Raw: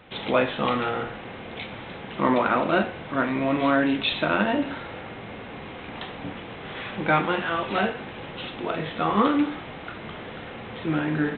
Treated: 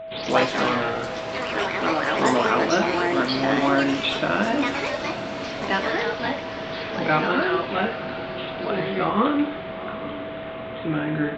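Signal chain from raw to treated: echoes that change speed 80 ms, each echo +4 st, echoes 3; whine 650 Hz -33 dBFS; diffused feedback echo 0.803 s, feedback 50%, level -13.5 dB

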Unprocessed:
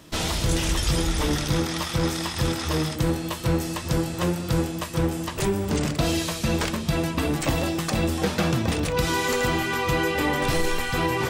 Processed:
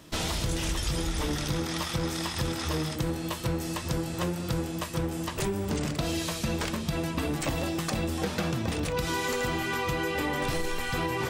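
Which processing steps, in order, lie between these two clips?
compressor, threshold -23 dBFS, peak gain reduction 5.5 dB; gain -2.5 dB

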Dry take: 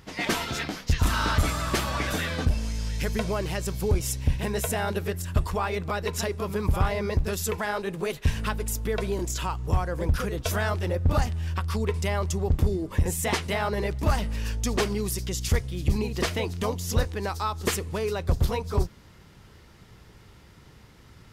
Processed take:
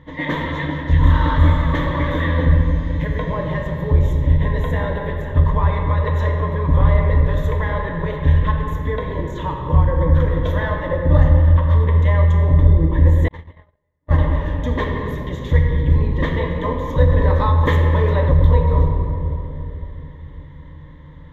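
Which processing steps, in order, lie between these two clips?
ripple EQ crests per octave 1.1, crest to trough 16 dB; shoebox room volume 150 m³, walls hard, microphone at 0.42 m; 13.28–14.19 gate -14 dBFS, range -53 dB; air absorption 480 m; 17.09–18.4 fast leveller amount 50%; gain +3 dB

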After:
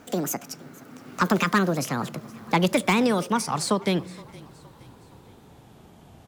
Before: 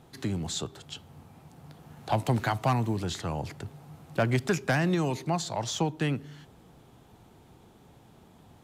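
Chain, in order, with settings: speed glide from 184% -> 91%; frequency-shifting echo 0.468 s, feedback 48%, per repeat -30 Hz, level -22.5 dB; gain +5 dB

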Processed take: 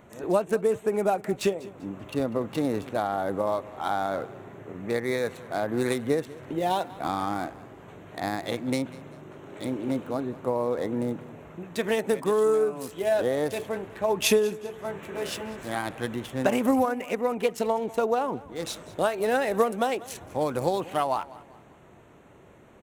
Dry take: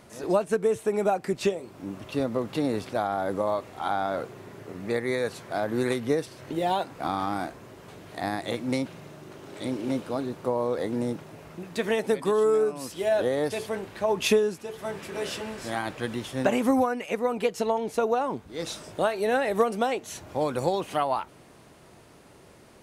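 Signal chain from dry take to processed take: Wiener smoothing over 9 samples; high shelf 7300 Hz +11.5 dB; on a send: feedback echo 0.195 s, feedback 38%, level -19.5 dB

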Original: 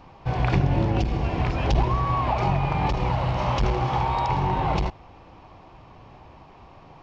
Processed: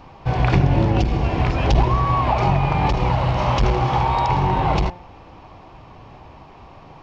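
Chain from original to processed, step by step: de-hum 177.3 Hz, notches 14; gain +5 dB

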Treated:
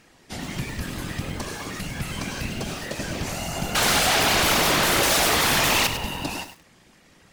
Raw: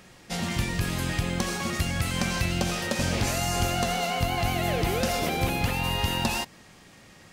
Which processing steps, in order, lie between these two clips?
3.75–5.87 sine folder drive 16 dB, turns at -14 dBFS; whisperiser; lo-fi delay 0.101 s, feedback 35%, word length 6-bit, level -9 dB; gain -3.5 dB

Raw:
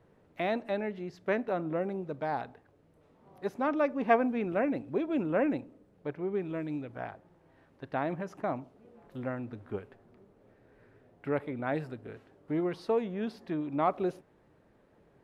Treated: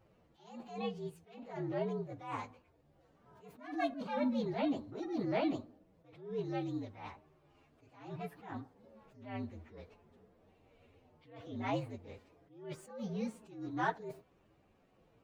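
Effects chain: inharmonic rescaling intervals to 121%; attack slew limiter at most 100 dB/s; gain -1 dB

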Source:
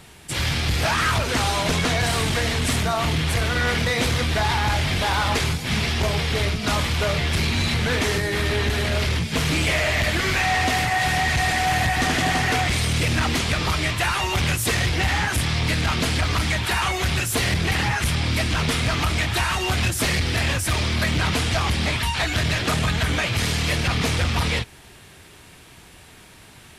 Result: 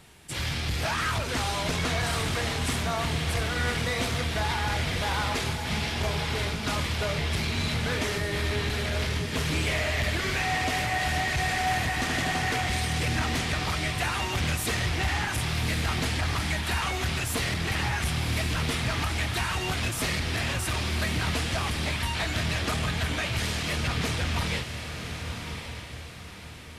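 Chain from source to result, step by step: diffused feedback echo 1.111 s, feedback 41%, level -7 dB; gain -7 dB

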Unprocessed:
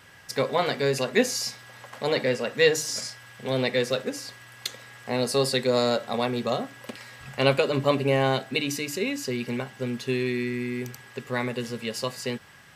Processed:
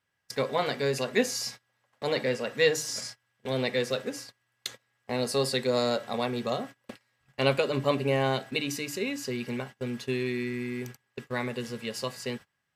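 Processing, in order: gate -37 dBFS, range -25 dB; gain -3.5 dB

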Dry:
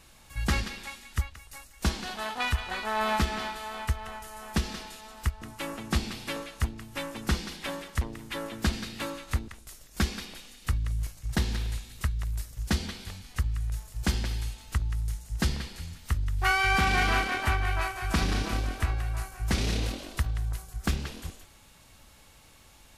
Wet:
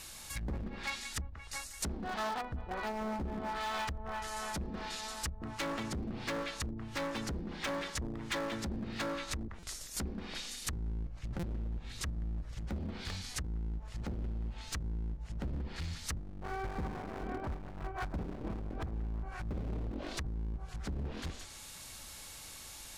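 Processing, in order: rattling part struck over -25 dBFS, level -21 dBFS; treble ducked by the level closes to 420 Hz, closed at -26.5 dBFS; limiter -26.5 dBFS, peak gain reduction 10 dB; hard clip -35 dBFS, distortion -9 dB; high shelf 2200 Hz +11 dB; notches 50/100/150/200/250 Hz; dynamic EQ 2800 Hz, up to -5 dB, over -58 dBFS, Q 2.2; stuck buffer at 9.59/11.39, samples 256, times 6; gain +1.5 dB

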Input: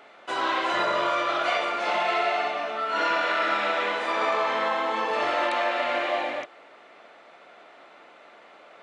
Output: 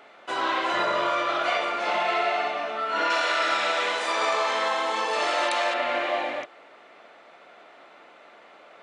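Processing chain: 3.1–5.74 tone controls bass -10 dB, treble +13 dB

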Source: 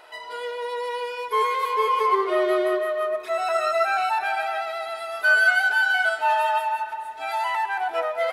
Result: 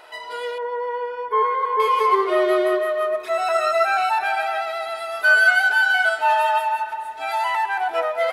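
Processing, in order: 0.58–1.8 polynomial smoothing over 41 samples; gain +3 dB

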